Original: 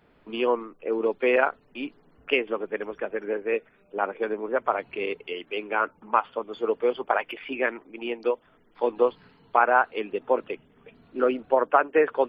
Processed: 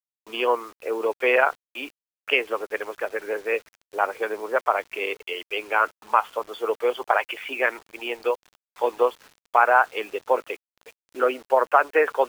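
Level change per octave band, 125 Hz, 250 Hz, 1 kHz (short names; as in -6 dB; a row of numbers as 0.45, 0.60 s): n/a, -5.0 dB, +3.0 dB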